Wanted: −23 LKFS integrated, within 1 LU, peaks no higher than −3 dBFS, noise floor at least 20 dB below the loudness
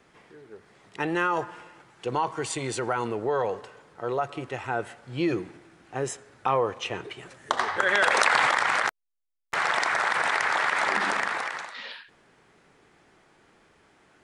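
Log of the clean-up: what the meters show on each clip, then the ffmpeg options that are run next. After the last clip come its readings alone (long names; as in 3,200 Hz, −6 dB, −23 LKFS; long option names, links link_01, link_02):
integrated loudness −26.5 LKFS; sample peak −4.5 dBFS; target loudness −23.0 LKFS
→ -af "volume=3.5dB,alimiter=limit=-3dB:level=0:latency=1"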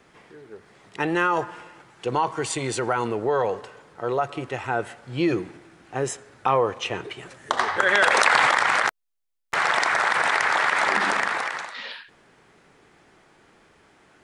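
integrated loudness −23.0 LKFS; sample peak −3.0 dBFS; background noise floor −58 dBFS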